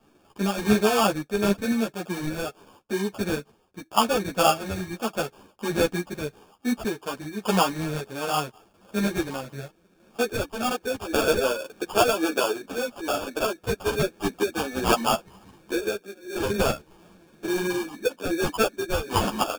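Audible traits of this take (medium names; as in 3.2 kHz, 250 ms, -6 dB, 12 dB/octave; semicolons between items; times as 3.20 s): random-step tremolo; aliases and images of a low sample rate 2 kHz, jitter 0%; a shimmering, thickened sound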